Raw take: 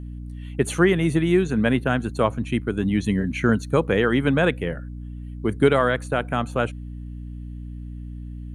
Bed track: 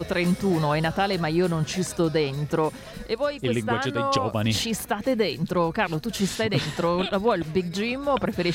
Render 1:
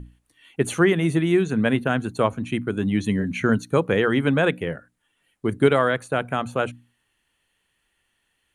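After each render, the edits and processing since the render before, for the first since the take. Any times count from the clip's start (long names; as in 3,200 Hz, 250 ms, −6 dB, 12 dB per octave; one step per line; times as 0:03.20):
mains-hum notches 60/120/180/240/300 Hz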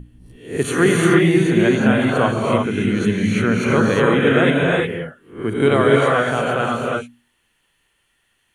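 peak hold with a rise ahead of every peak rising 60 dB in 0.40 s
reverb whose tail is shaped and stops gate 380 ms rising, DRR −2.5 dB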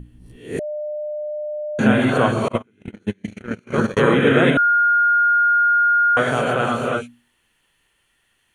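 0:00.59–0:01.79: beep over 601 Hz −24 dBFS
0:02.48–0:03.97: noise gate −15 dBFS, range −38 dB
0:04.57–0:06.17: beep over 1,420 Hz −12.5 dBFS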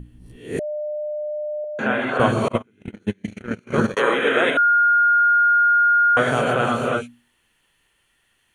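0:01.64–0:02.20: resonant band-pass 1,200 Hz, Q 0.65
0:03.96–0:05.20: high-pass filter 490 Hz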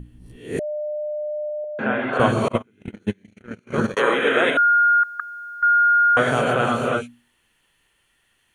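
0:01.49–0:02.13: high-frequency loss of the air 250 metres
0:03.24–0:04.00: fade in, from −21.5 dB
0:05.03–0:05.63: every bin compressed towards the loudest bin 10 to 1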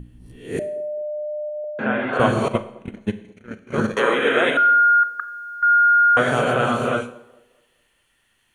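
delay with a band-pass on its return 211 ms, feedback 36%, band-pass 500 Hz, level −21.5 dB
four-comb reverb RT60 0.66 s, combs from 29 ms, DRR 12.5 dB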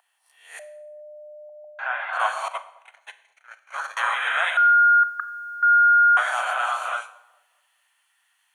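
Butterworth high-pass 740 Hz 48 dB per octave
parametric band 3,000 Hz −3.5 dB 1.4 octaves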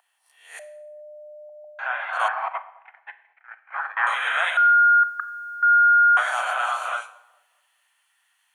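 0:02.28–0:04.07: loudspeaker in its box 400–2,300 Hz, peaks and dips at 560 Hz −8 dB, 800 Hz +7 dB, 1,800 Hz +6 dB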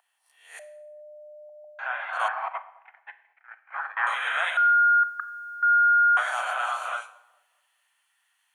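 level −3.5 dB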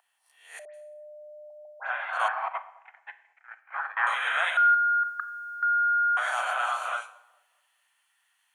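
0:00.65–0:01.90: all-pass dispersion highs, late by 91 ms, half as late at 2,200 Hz
0:02.55–0:03.61: low-pass with resonance 7,100 Hz, resonance Q 2.5
0:04.74–0:06.37: downward compressor, threshold −22 dBFS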